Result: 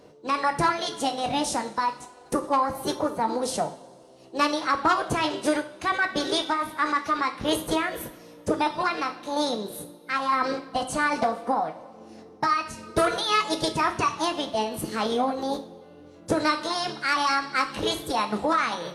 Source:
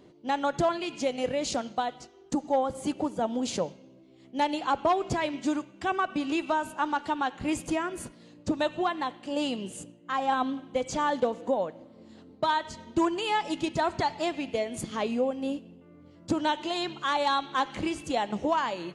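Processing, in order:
formants moved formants +5 semitones
coupled-rooms reverb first 0.36 s, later 2.4 s, from −22 dB, DRR 6 dB
level +2.5 dB

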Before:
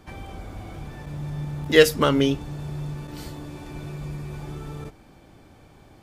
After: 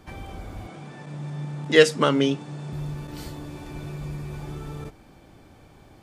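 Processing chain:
0:00.67–0:02.73: elliptic band-pass filter 150–8,900 Hz, stop band 40 dB

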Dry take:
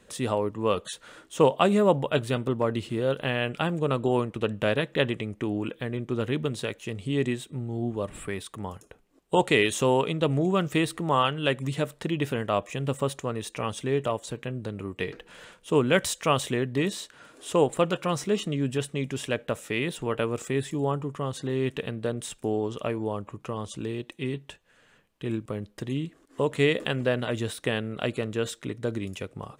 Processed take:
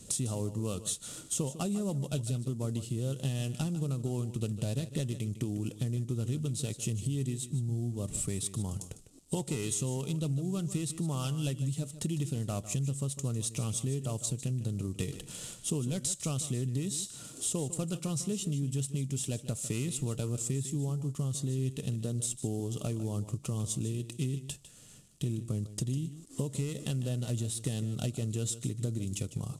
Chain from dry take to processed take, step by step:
variable-slope delta modulation 64 kbit/s
graphic EQ with 10 bands 125 Hz +8 dB, 500 Hz −7 dB, 1,000 Hz −10 dB, 2,000 Hz −12 dB, 8,000 Hz +11 dB
downward compressor 10 to 1, threshold −36 dBFS, peak gain reduction 18.5 dB
notch filter 1,600 Hz, Q 6.3
on a send: single-tap delay 152 ms −13.5 dB
on the sum: level +6 dB

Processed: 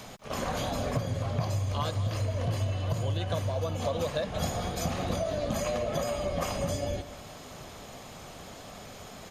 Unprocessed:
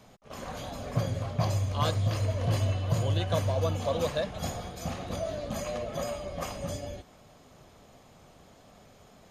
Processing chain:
downward compressor 12 to 1, threshold −35 dBFS, peak gain reduction 14.5 dB
slap from a distant wall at 33 metres, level −15 dB
one half of a high-frequency compander encoder only
level +8.5 dB

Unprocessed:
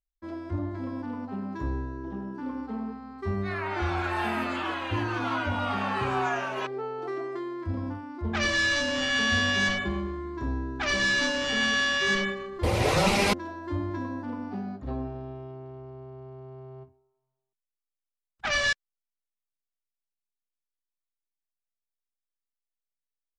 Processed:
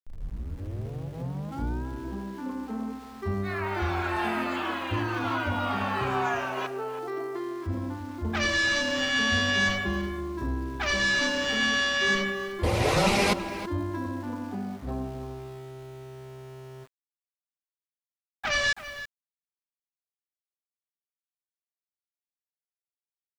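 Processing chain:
turntable start at the beginning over 1.88 s
slap from a distant wall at 56 metres, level −12 dB
centre clipping without the shift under −46.5 dBFS

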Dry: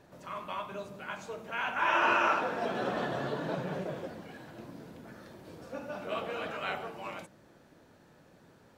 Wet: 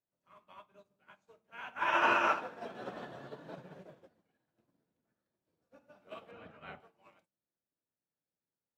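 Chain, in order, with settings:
0:06.31–0:06.80: bass and treble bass +10 dB, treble −12 dB
expander for the loud parts 2.5 to 1, over −51 dBFS

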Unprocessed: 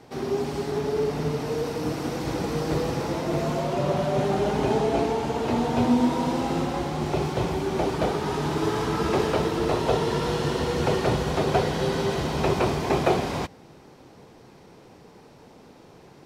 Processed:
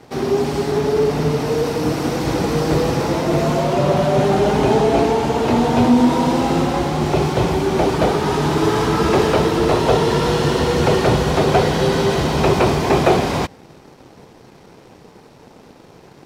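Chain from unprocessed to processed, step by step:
leveller curve on the samples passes 1
level +5 dB

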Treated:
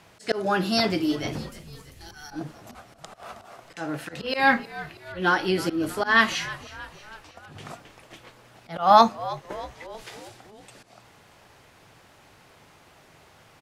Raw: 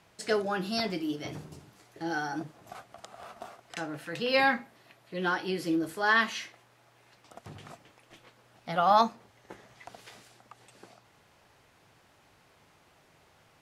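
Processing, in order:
0:01.49–0:02.31: first difference
volume swells 162 ms
echo with shifted repeats 317 ms, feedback 58%, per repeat −82 Hz, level −17 dB
level +8 dB

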